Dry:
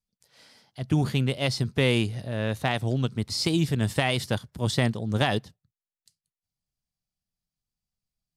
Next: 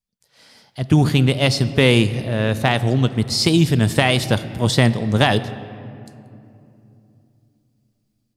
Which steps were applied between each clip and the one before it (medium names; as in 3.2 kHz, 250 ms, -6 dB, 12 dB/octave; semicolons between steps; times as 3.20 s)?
level rider gain up to 10.5 dB; on a send at -13 dB: reverberation RT60 2.9 s, pre-delay 5 ms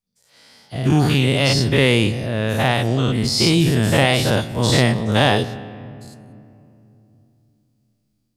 every event in the spectrogram widened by 120 ms; trim -4.5 dB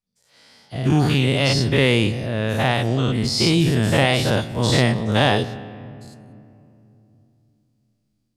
treble shelf 12 kHz -9 dB; trim -1.5 dB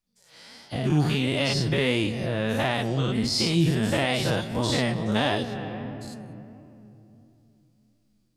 compression 2.5:1, threshold -29 dBFS, peak gain reduction 11.5 dB; flange 1.5 Hz, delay 2.8 ms, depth 3.7 ms, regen +32%; trim +7.5 dB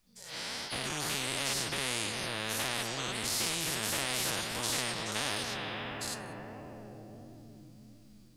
spectrum-flattening compressor 4:1; trim -5 dB